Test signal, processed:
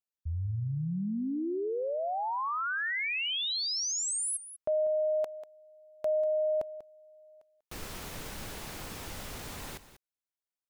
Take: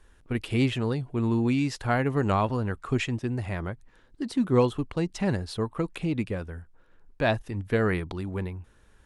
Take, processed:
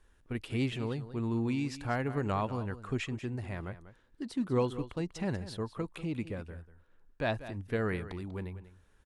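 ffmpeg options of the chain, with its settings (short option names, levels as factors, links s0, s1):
-af "aecho=1:1:192:0.2,volume=0.422"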